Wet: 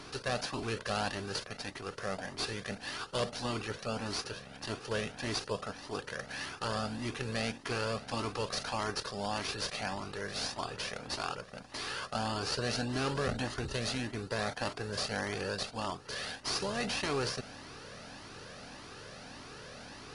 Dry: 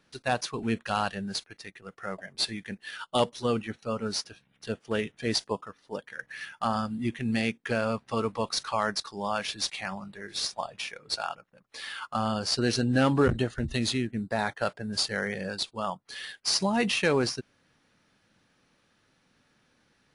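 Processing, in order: per-bin compression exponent 0.4; cascading flanger rising 1.7 Hz; gain -8.5 dB

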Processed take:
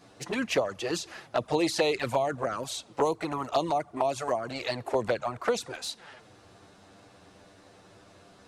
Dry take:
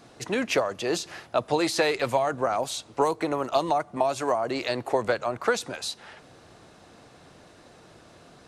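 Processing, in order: envelope flanger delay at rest 11.7 ms, full sweep at -19.5 dBFS

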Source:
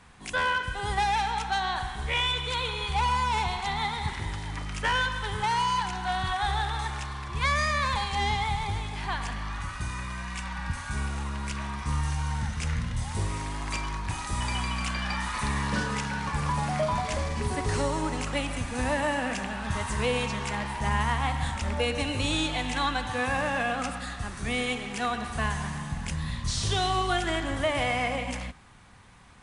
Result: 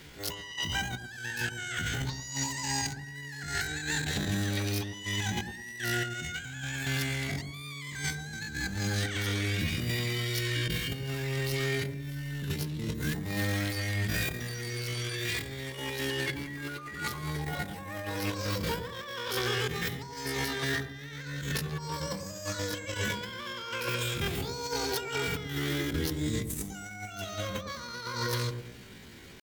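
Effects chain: negative-ratio compressor -33 dBFS, ratio -0.5; pitch shift +11.5 st; on a send: dark delay 0.106 s, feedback 33%, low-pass 720 Hz, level -6 dB

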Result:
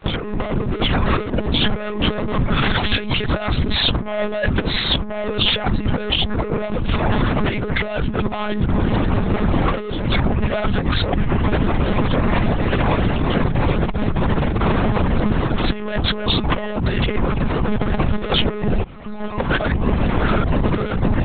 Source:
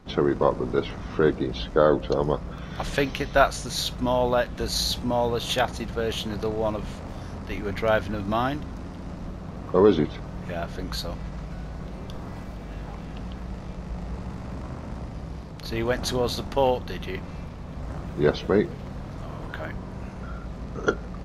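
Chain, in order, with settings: 2.54–3.31 high shelf 2400 Hz +9 dB; fuzz box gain 37 dB, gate -45 dBFS; 18.83–19.4 metallic resonator 110 Hz, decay 0.35 s, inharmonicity 0.002; flange 0.28 Hz, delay 5.5 ms, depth 4.5 ms, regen -71%; reverb removal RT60 1.3 s; monotone LPC vocoder at 8 kHz 210 Hz; bell 200 Hz +3 dB 1.4 oct; negative-ratio compressor -24 dBFS, ratio -0.5; gain +6.5 dB

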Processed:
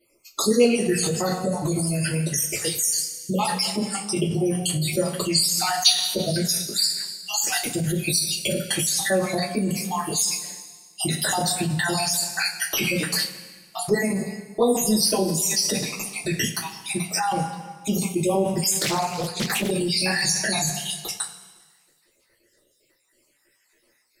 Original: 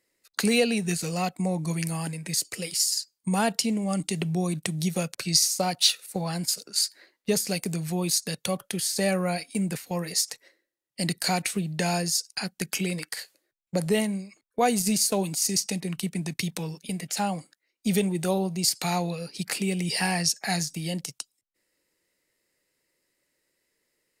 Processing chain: random spectral dropouts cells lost 62%; two-slope reverb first 0.22 s, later 1.5 s, from -18 dB, DRR -9 dB; in parallel at -1 dB: negative-ratio compressor -27 dBFS, ratio -0.5; 18.79–19.71 on the sum: Doppler distortion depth 0.58 ms; gain -3.5 dB

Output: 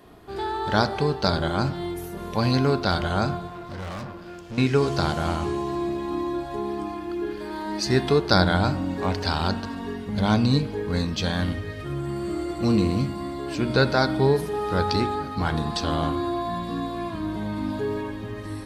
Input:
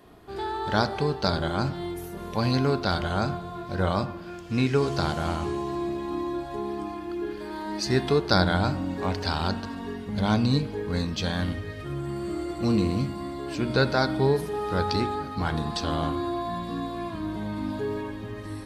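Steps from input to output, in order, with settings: 3.47–4.58 tube stage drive 34 dB, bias 0.6; gain +2.5 dB

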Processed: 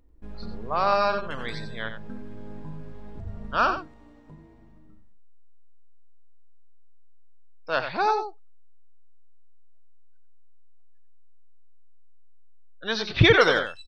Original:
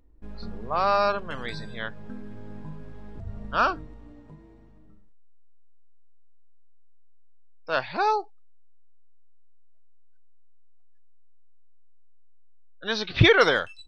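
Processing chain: 3.78–4.28 tone controls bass -9 dB, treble +2 dB; on a send: echo 90 ms -9 dB

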